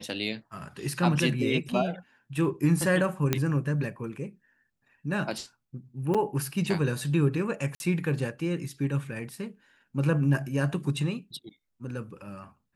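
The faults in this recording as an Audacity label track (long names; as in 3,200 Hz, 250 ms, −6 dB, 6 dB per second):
3.330000	3.330000	click −9 dBFS
6.140000	6.150000	drop-out 6.2 ms
7.750000	7.800000	drop-out 51 ms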